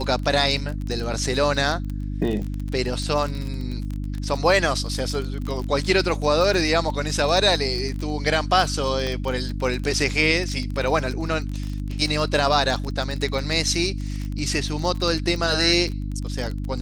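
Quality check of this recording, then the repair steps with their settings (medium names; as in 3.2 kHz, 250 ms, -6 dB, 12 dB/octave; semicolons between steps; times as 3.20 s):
crackle 24 per s -26 dBFS
hum 50 Hz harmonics 6 -28 dBFS
9.07 s: pop -15 dBFS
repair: de-click; de-hum 50 Hz, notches 6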